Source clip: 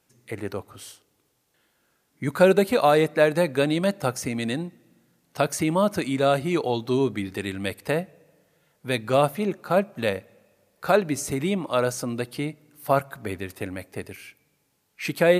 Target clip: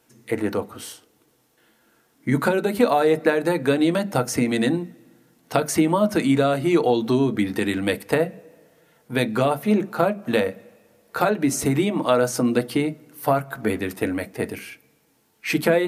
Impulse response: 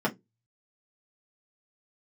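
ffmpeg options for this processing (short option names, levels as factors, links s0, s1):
-filter_complex "[0:a]acompressor=threshold=0.0708:ratio=6,atempo=0.97,asplit=2[s0][s1];[1:a]atrim=start_sample=2205,highshelf=f=7700:g=10[s2];[s1][s2]afir=irnorm=-1:irlink=0,volume=0.188[s3];[s0][s3]amix=inputs=2:normalize=0,volume=1.58"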